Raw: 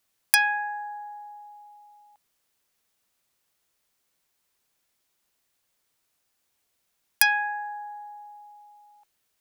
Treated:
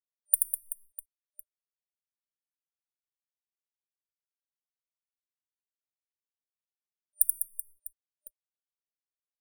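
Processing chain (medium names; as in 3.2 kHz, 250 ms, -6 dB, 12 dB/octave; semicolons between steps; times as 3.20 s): reverse bouncing-ball echo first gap 80 ms, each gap 1.5×, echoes 5; crossover distortion -32 dBFS; FFT band-reject 600–9100 Hz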